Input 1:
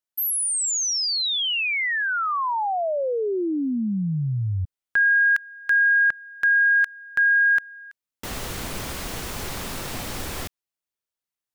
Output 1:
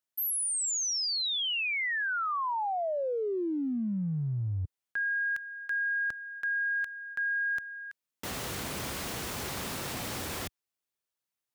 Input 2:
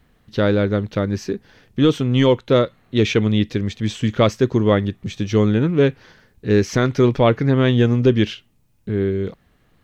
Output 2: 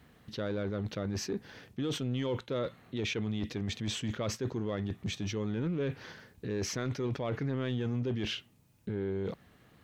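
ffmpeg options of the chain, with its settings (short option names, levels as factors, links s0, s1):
-af "highpass=77,areverse,acompressor=threshold=0.0355:ratio=8:attack=0.29:release=44:knee=6:detection=rms,areverse"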